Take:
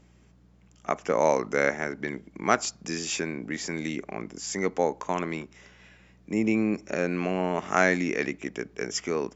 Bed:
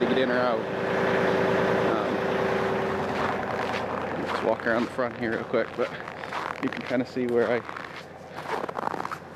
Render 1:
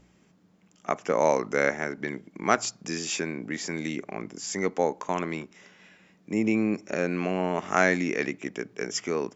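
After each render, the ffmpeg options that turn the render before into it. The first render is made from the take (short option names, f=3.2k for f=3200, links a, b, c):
-af "bandreject=f=60:t=h:w=4,bandreject=f=120:t=h:w=4"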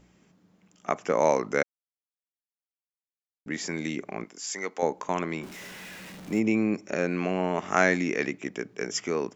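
-filter_complex "[0:a]asettb=1/sr,asplit=3[a][b][c];[a]atrim=end=4.244[d];[b]atrim=start=4.24:end=4.83,asetpts=PTS-STARTPTS,afade=t=in:d=0.004:c=qsin,afade=t=out:st=0.586:d=0.004:c=qsin,highpass=f=910:p=1[e];[c]atrim=start=4.826[f];[d][e]acrossfade=d=0.004:c1=hsin:c2=qsin[g];[g][f]acrossfade=d=0.004:c1=qsin:c2=hsin,asettb=1/sr,asplit=3[h][i][j];[h]atrim=end=5.434[k];[i]atrim=start=5.43:end=6.4,asetpts=PTS-STARTPTS,afade=t=in:d=0.004:c=qsin,afade=t=out:st=0.966:d=0.004:c=qsin,aeval=exprs='val(0)+0.5*0.0112*sgn(val(0))':c=same[l];[j]atrim=start=6.396[m];[k][l]acrossfade=d=0.004:c1=hsin:c2=qsin[n];[n][m]acrossfade=d=0.004:c1=qsin:c2=hsin,asplit=3[o][p][q];[o]atrim=end=1.63,asetpts=PTS-STARTPTS,afade=t=out:st=1.626:d=0.004:c=hsin[r];[p]atrim=start=1.63:end=3.46,asetpts=PTS-STARTPTS,volume=0[s];[q]atrim=start=3.46,asetpts=PTS-STARTPTS,afade=t=in:d=0.004:c=hsin[t];[r][s][t]concat=n=3:v=0:a=1"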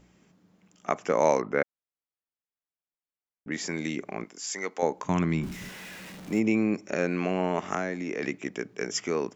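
-filter_complex "[0:a]asettb=1/sr,asplit=3[a][b][c];[a]atrim=end=1.414[d];[b]atrim=start=1.41:end=3.52,asetpts=PTS-STARTPTS,afade=t=in:d=0.004:c=qsin,afade=t=out:st=2.106:d=0.004:c=qsin,lowpass=2.2k[e];[c]atrim=start=3.516[f];[d][e]acrossfade=d=0.004:c1=hsin:c2=qsin[g];[g][f]acrossfade=d=0.004:c1=qsin:c2=hsin,asplit=3[h][i][j];[h]afade=t=out:st=5.04:d=0.02[k];[i]asubboost=boost=7.5:cutoff=190,afade=t=in:st=5.04:d=0.02,afade=t=out:st=5.68:d=0.02[l];[j]afade=t=in:st=5.68:d=0.02[m];[k][l][m]amix=inputs=3:normalize=0,asettb=1/sr,asplit=3[n][o][p];[n]atrim=end=7.744[q];[o]atrim=start=7.74:end=8.23,asetpts=PTS-STARTPTS,afade=t=in:d=0.004:c=qsin,afade=t=out:st=0.486:d=0.004:c=qsin,acrossover=split=380|1200[r][s][t];[r]acompressor=threshold=-34dB:ratio=4[u];[s]acompressor=threshold=-33dB:ratio=4[v];[t]acompressor=threshold=-39dB:ratio=4[w];[u][v][w]amix=inputs=3:normalize=0[x];[p]atrim=start=8.226[y];[q][x]acrossfade=d=0.004:c1=hsin:c2=qsin[z];[z][y]acrossfade=d=0.004:c1=qsin:c2=hsin"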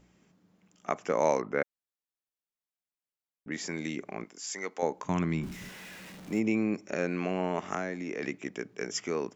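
-af "volume=-3.5dB"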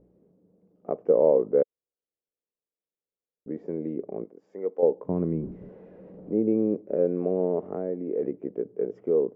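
-af "lowpass=f=480:t=q:w=3.9"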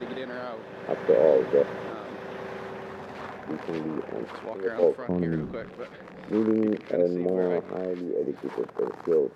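-filter_complex "[1:a]volume=-11.5dB[a];[0:a][a]amix=inputs=2:normalize=0"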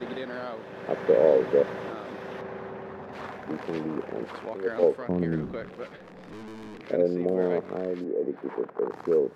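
-filter_complex "[0:a]asettb=1/sr,asplit=3[a][b][c];[a]atrim=end=2.414[d];[b]atrim=start=2.41:end=3.13,asetpts=PTS-STARTPTS,afade=t=in:d=0.004:c=qsin,afade=t=out:st=0.716:d=0.004:c=qsin,lowpass=f=1.5k:p=1[e];[c]atrim=start=3.126[f];[d][e]acrossfade=d=0.004:c1=hsin:c2=qsin[g];[g][f]acrossfade=d=0.004:c1=qsin:c2=hsin,asettb=1/sr,asplit=3[h][i][j];[h]atrim=end=5.974[k];[i]atrim=start=5.97:end=6.8,asetpts=PTS-STARTPTS,afade=t=in:d=0.004:c=qsin,afade=t=out:st=0.826:d=0.004:c=qsin,aeval=exprs='(tanh(100*val(0)+0.35)-tanh(0.35))/100':c=same[l];[j]atrim=start=6.796[m];[k][l]acrossfade=d=0.004:c1=hsin:c2=qsin[n];[n][m]acrossfade=d=0.004:c1=qsin:c2=hsin,asettb=1/sr,asplit=3[o][p][q];[o]atrim=end=8.044[r];[p]atrim=start=8.04:end=8.91,asetpts=PTS-STARTPTS,afade=t=in:d=0.004:c=qsin,afade=t=out:st=0.866:d=0.004:c=qsin,acrossover=split=150 2500:gain=0.178 1 0.178[s][t][u];[s][t][u]amix=inputs=3:normalize=0[v];[q]atrim=start=8.906[w];[r][v]acrossfade=d=0.004:c1=hsin:c2=qsin[x];[x][w]acrossfade=d=0.004:c1=qsin:c2=hsin"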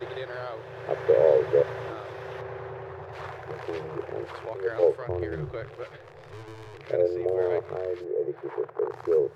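-af "afftfilt=real='re*(1-between(b*sr/4096,160,330))':imag='im*(1-between(b*sr/4096,160,330))':win_size=4096:overlap=0.75,equalizer=f=110:t=o:w=0.96:g=9.5"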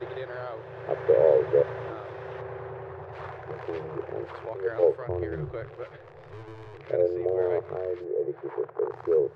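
-af "lowpass=f=2.1k:p=1"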